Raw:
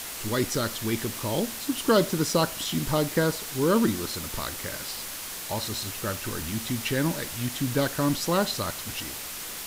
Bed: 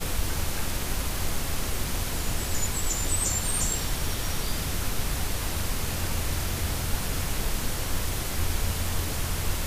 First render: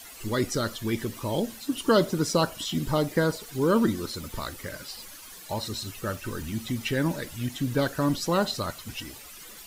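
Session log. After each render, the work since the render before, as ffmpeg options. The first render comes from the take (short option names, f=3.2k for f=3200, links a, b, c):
-af "afftdn=nr=13:nf=-37"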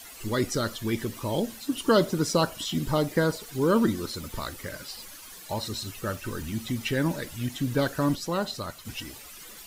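-filter_complex "[0:a]asplit=3[a][b][c];[a]atrim=end=8.152[d];[b]atrim=start=8.148:end=8.852,asetpts=PTS-STARTPTS,volume=-4dB[e];[c]atrim=start=8.848[f];[d][e]acrossfade=d=0.004:c1=hsin:c2=hsin[g];[g][f]acrossfade=d=0.004:c1=hsin:c2=hsin"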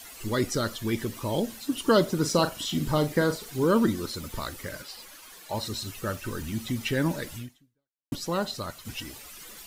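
-filter_complex "[0:a]asettb=1/sr,asplit=3[a][b][c];[a]atrim=end=2.184[d];[b]atrim=start=2.18:end=3.65,asetpts=PTS-STARTPTS,afade=t=in:d=0.004:c=qsin,afade=t=out:st=1.466:d=0.004:c=qsin,asplit=2[e][f];[f]adelay=40,volume=-10dB[g];[e][g]amix=inputs=2:normalize=0,atrim=end_sample=64827[h];[c]atrim=start=3.646[i];[d][h]acrossfade=d=0.004:c1=hsin:c2=qsin[j];[j][i]acrossfade=d=0.004:c1=qsin:c2=hsin,asettb=1/sr,asplit=3[k][l][m];[k]atrim=end=4.824[n];[l]atrim=start=4.82:end=5.54,asetpts=PTS-STARTPTS,afade=t=in:d=0.004:c=qsin,afade=t=out:st=0.716:d=0.004:c=qsin,bass=f=250:g=-8,treble=f=4k:g=-4[o];[m]atrim=start=5.536[p];[n][o]acrossfade=d=0.004:c1=hsin:c2=qsin[q];[q][p]acrossfade=d=0.004:c1=qsin:c2=hsin,asplit=2[r][s];[r]atrim=end=8.12,asetpts=PTS-STARTPTS,afade=t=out:st=7.37:d=0.75:c=exp[t];[s]atrim=start=8.12,asetpts=PTS-STARTPTS,afade=t=in:d=0.004:c=hsin[u];[t][u]concat=n=2:v=0:a=1"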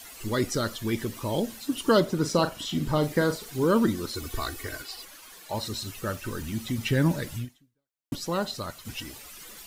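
-filter_complex "[0:a]asettb=1/sr,asplit=3[a][b][c];[a]atrim=end=2.004[d];[b]atrim=start=2:end=3.03,asetpts=PTS-STARTPTS,afade=t=in:d=0.004:c=qsin,afade=t=out:st=1.026:d=0.004:c=qsin,highshelf=f=4.8k:g=-5.5[e];[c]atrim=start=3.026[f];[d][e]acrossfade=d=0.004:c1=hsin:c2=qsin[g];[g][f]acrossfade=d=0.004:c1=qsin:c2=hsin,asettb=1/sr,asplit=3[h][i][j];[h]atrim=end=4.154[k];[i]atrim=start=4.15:end=5.05,asetpts=PTS-STARTPTS,afade=t=in:d=0.004:c=qsin,afade=t=out:st=0.896:d=0.004:c=qsin,aecho=1:1:2.7:0.86,atrim=end_sample=39690[l];[j]atrim=start=5.046[m];[k][l]acrossfade=d=0.004:c1=hsin:c2=qsin[n];[n][m]acrossfade=d=0.004:c1=qsin:c2=hsin,asettb=1/sr,asplit=3[o][p][q];[o]atrim=end=6.784[r];[p]atrim=start=6.78:end=7.45,asetpts=PTS-STARTPTS,afade=t=in:d=0.004:c=qsin,afade=t=out:st=0.666:d=0.004:c=qsin,equalizer=f=120:w=0.94:g=7[s];[q]atrim=start=7.446[t];[r][s]acrossfade=d=0.004:c1=hsin:c2=qsin[u];[u][t]acrossfade=d=0.004:c1=qsin:c2=hsin"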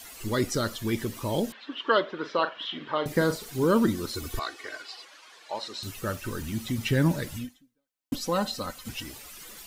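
-filter_complex "[0:a]asettb=1/sr,asplit=3[a][b][c];[a]atrim=end=1.524[d];[b]atrim=start=1.52:end=3.06,asetpts=PTS-STARTPTS,afade=t=in:d=0.004:c=qsin,afade=t=out:st=1.536:d=0.004:c=qsin,highpass=490,equalizer=f=760:t=q:w=4:g=-3,equalizer=f=1.1k:t=q:w=4:g=3,equalizer=f=1.7k:t=q:w=4:g=6,equalizer=f=3.3k:t=q:w=4:g=5,lowpass=f=3.4k:w=0.5412,lowpass=f=3.4k:w=1.3066[e];[c]atrim=start=3.056[f];[d][e]acrossfade=d=0.004:c1=hsin:c2=qsin[g];[g][f]acrossfade=d=0.004:c1=qsin:c2=hsin,asettb=1/sr,asplit=3[h][i][j];[h]atrim=end=4.394[k];[i]atrim=start=4.39:end=5.83,asetpts=PTS-STARTPTS,afade=t=in:d=0.004:c=qsin,afade=t=out:st=1.436:d=0.004:c=qsin,highpass=460,lowpass=4.9k[l];[j]atrim=start=5.826[m];[k][l]acrossfade=d=0.004:c1=hsin:c2=qsin[n];[n][m]acrossfade=d=0.004:c1=qsin:c2=hsin,asettb=1/sr,asplit=3[o][p][q];[o]atrim=end=7.364[r];[p]atrim=start=7.36:end=8.89,asetpts=PTS-STARTPTS,afade=t=in:d=0.004:c=qsin,afade=t=out:st=1.526:d=0.004:c=qsin,aecho=1:1:3.9:0.65,atrim=end_sample=67473[s];[q]atrim=start=8.886[t];[r][s]acrossfade=d=0.004:c1=hsin:c2=qsin[u];[u][t]acrossfade=d=0.004:c1=qsin:c2=hsin"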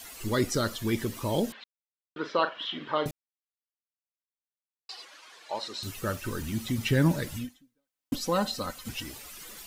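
-filter_complex "[0:a]asplit=5[a][b][c][d][e];[a]atrim=end=1.64,asetpts=PTS-STARTPTS,afade=t=out:st=1.636:d=0.004:c=hsin[f];[b]atrim=start=1.64:end=2.16,asetpts=PTS-STARTPTS,volume=0[g];[c]atrim=start=2.16:end=3.11,asetpts=PTS-STARTPTS,afade=t=in:d=0.004:c=hsin,afade=t=out:st=0.946:d=0.004:c=hsin[h];[d]atrim=start=3.11:end=4.89,asetpts=PTS-STARTPTS,volume=0[i];[e]atrim=start=4.89,asetpts=PTS-STARTPTS,afade=t=in:d=0.004:c=hsin[j];[f][g][h][i][j]concat=n=5:v=0:a=1"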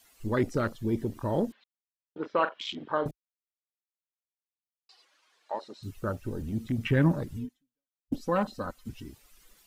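-af "afwtdn=0.02"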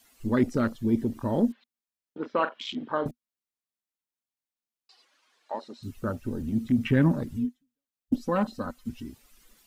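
-af "equalizer=f=240:w=4.5:g=10"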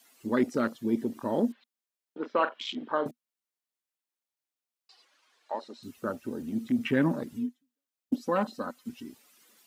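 -af "highpass=250"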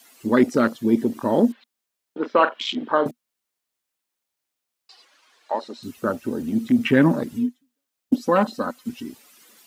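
-af "volume=9dB"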